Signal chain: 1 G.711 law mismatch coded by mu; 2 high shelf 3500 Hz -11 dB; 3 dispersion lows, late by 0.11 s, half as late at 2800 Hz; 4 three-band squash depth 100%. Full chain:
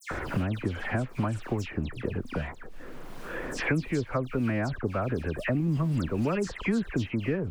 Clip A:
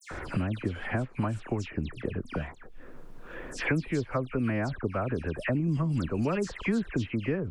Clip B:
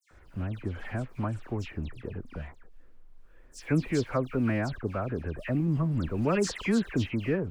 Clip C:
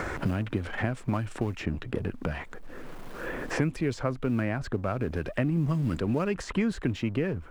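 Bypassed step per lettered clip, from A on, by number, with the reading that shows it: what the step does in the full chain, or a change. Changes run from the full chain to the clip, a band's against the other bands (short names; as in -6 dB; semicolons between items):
1, distortion -21 dB; 4, momentary loudness spread change +3 LU; 3, crest factor change +2.0 dB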